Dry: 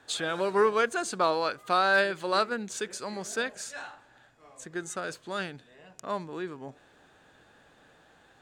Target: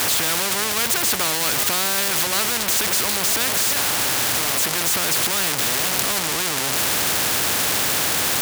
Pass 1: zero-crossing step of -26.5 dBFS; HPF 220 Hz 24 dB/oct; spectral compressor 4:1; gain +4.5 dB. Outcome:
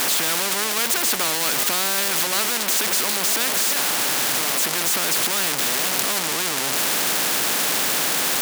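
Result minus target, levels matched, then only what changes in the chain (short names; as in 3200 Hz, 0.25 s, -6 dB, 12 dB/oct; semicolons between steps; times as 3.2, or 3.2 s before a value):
125 Hz band -5.0 dB
change: HPF 81 Hz 24 dB/oct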